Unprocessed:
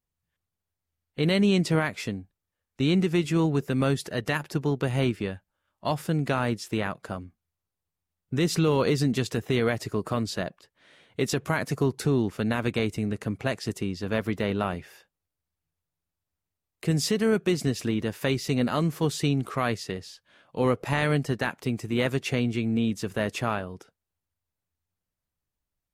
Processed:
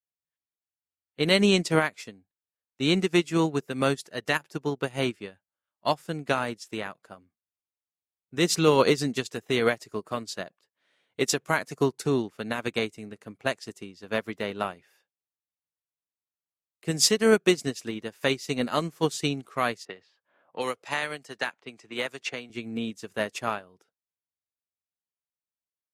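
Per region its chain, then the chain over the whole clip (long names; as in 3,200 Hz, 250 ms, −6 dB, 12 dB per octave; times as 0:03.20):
0:19.85–0:22.50: low-pass that shuts in the quiet parts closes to 810 Hz, open at −21.5 dBFS + low-shelf EQ 380 Hz −11 dB + multiband upward and downward compressor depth 70%
whole clip: dynamic equaliser 6,900 Hz, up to +5 dB, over −50 dBFS, Q 1.1; high-pass filter 350 Hz 6 dB per octave; expander for the loud parts 2.5 to 1, over −37 dBFS; level +8 dB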